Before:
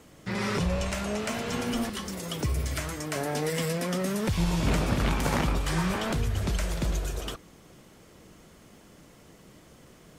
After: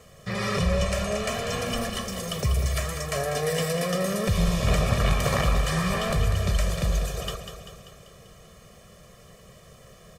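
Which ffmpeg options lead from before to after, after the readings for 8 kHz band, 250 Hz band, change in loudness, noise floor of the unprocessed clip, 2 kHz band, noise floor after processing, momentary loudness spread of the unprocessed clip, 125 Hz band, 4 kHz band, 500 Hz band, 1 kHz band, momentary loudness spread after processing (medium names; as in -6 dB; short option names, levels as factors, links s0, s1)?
+3.5 dB, -0.5 dB, +3.0 dB, -54 dBFS, +3.0 dB, -51 dBFS, 6 LU, +4.0 dB, +4.0 dB, +4.5 dB, +3.0 dB, 8 LU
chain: -af "aecho=1:1:1.7:0.89,aecho=1:1:195|390|585|780|975|1170|1365:0.376|0.214|0.122|0.0696|0.0397|0.0226|0.0129"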